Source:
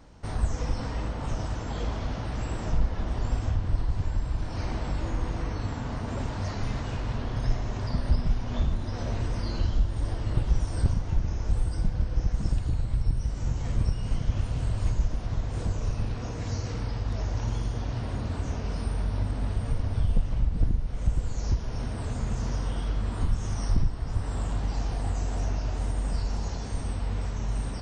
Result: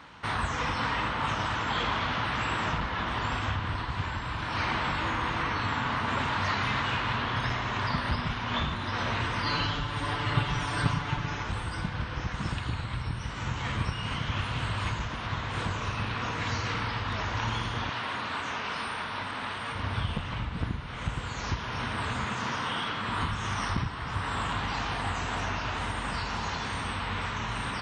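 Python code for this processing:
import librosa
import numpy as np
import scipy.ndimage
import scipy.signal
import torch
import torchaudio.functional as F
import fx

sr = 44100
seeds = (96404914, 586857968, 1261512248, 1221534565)

y = fx.comb(x, sr, ms=6.9, depth=0.78, at=(9.44, 11.43))
y = fx.highpass(y, sr, hz=430.0, slope=6, at=(17.89, 19.75))
y = fx.highpass(y, sr, hz=140.0, slope=12, at=(22.24, 23.09))
y = scipy.signal.sosfilt(scipy.signal.butter(2, 100.0, 'highpass', fs=sr, output='sos'), y)
y = fx.band_shelf(y, sr, hz=1900.0, db=14.0, octaves=2.4)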